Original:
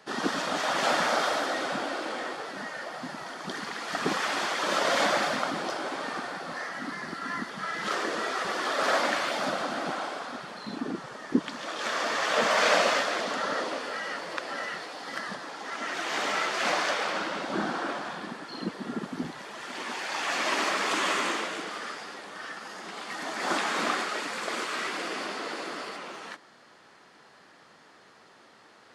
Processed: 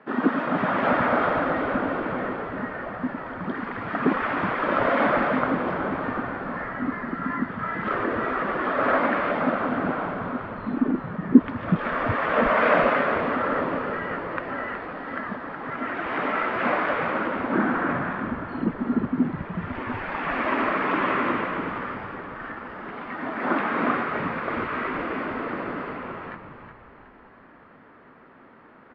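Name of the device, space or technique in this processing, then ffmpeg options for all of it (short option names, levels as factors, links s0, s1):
bass cabinet: -filter_complex "[0:a]highpass=75,equalizer=f=250:t=q:w=4:g=9,equalizer=f=780:t=q:w=4:g=-4,equalizer=f=1800:t=q:w=4:g=-3,lowpass=f=2100:w=0.5412,lowpass=f=2100:w=1.3066,asettb=1/sr,asplit=3[s0][s1][s2];[s0]atrim=end=17.504[s3];[s1]atrim=start=17.5:end=18.23,asetpts=PTS-STARTPTS,afade=t=in:d=0.004:c=qsin,afade=t=out:st=0.726:d=0.004:c=qsin,equalizer=f=1900:w=1.5:g=5.5[s4];[s2]atrim=start=18.226[s5];[s3][s4]acrossfade=d=0.004:c1=hsin:c2=qsin[s6];[s6][s5]acrossfade=d=0.004:c1=qsin:c2=hsin,asplit=6[s7][s8][s9][s10][s11][s12];[s8]adelay=369,afreqshift=-73,volume=0.355[s13];[s9]adelay=738,afreqshift=-146,volume=0.157[s14];[s10]adelay=1107,afreqshift=-219,volume=0.0684[s15];[s11]adelay=1476,afreqshift=-292,volume=0.0302[s16];[s12]adelay=1845,afreqshift=-365,volume=0.0133[s17];[s7][s13][s14][s15][s16][s17]amix=inputs=6:normalize=0,volume=1.78"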